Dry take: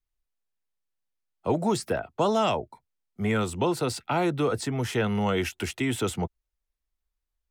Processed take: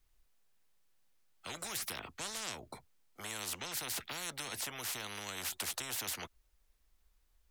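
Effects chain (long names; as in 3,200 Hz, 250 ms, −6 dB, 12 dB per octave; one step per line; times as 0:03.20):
every bin compressed towards the loudest bin 10 to 1
level −8.5 dB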